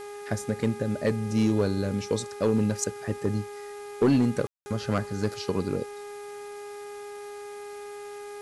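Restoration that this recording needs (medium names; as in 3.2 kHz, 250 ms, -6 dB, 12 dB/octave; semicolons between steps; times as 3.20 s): clip repair -15.5 dBFS; de-hum 410.3 Hz, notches 6; room tone fill 4.47–4.66 s; noise print and reduce 30 dB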